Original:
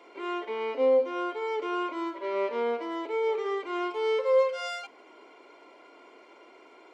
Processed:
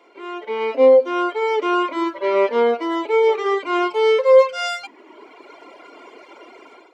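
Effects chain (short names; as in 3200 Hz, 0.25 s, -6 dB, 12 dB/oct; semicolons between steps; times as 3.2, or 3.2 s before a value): reverb removal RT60 1.3 s; AGC gain up to 13.5 dB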